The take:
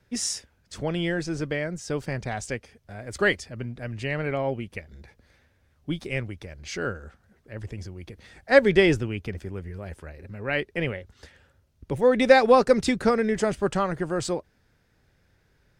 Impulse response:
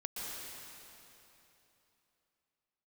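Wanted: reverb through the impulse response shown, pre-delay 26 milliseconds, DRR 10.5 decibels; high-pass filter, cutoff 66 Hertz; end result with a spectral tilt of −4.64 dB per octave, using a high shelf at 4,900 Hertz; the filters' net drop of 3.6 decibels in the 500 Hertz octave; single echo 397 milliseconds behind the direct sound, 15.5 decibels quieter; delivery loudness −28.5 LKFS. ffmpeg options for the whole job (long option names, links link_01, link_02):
-filter_complex "[0:a]highpass=66,equalizer=frequency=500:width_type=o:gain=-4,highshelf=frequency=4900:gain=-8,aecho=1:1:397:0.168,asplit=2[link_01][link_02];[1:a]atrim=start_sample=2205,adelay=26[link_03];[link_02][link_03]afir=irnorm=-1:irlink=0,volume=-12dB[link_04];[link_01][link_04]amix=inputs=2:normalize=0,volume=-1.5dB"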